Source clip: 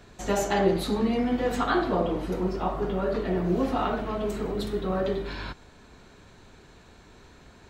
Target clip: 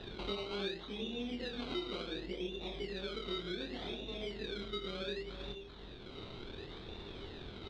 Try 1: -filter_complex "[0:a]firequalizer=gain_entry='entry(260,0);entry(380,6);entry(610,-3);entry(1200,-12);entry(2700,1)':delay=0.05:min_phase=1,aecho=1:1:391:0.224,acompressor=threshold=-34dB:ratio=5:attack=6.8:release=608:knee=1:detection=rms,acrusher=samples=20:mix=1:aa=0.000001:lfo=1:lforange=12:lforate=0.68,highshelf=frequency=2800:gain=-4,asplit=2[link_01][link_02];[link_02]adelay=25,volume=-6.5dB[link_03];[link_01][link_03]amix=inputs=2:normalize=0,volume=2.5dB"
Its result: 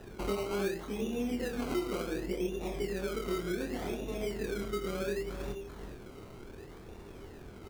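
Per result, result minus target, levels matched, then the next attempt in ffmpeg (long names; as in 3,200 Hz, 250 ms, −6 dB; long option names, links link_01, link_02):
4,000 Hz band −11.5 dB; downward compressor: peak gain reduction −7 dB
-filter_complex "[0:a]firequalizer=gain_entry='entry(260,0);entry(380,6);entry(610,-3);entry(1200,-12);entry(2700,1)':delay=0.05:min_phase=1,aecho=1:1:391:0.224,acompressor=threshold=-34dB:ratio=5:attack=6.8:release=608:knee=1:detection=rms,acrusher=samples=20:mix=1:aa=0.000001:lfo=1:lforange=12:lforate=0.68,lowpass=frequency=3700:width_type=q:width=8.2,highshelf=frequency=2800:gain=-4,asplit=2[link_01][link_02];[link_02]adelay=25,volume=-6.5dB[link_03];[link_01][link_03]amix=inputs=2:normalize=0,volume=2.5dB"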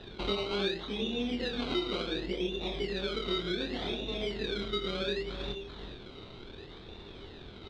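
downward compressor: peak gain reduction −7 dB
-filter_complex "[0:a]firequalizer=gain_entry='entry(260,0);entry(380,6);entry(610,-3);entry(1200,-12);entry(2700,1)':delay=0.05:min_phase=1,aecho=1:1:391:0.224,acompressor=threshold=-43dB:ratio=5:attack=6.8:release=608:knee=1:detection=rms,acrusher=samples=20:mix=1:aa=0.000001:lfo=1:lforange=12:lforate=0.68,lowpass=frequency=3700:width_type=q:width=8.2,highshelf=frequency=2800:gain=-4,asplit=2[link_01][link_02];[link_02]adelay=25,volume=-6.5dB[link_03];[link_01][link_03]amix=inputs=2:normalize=0,volume=2.5dB"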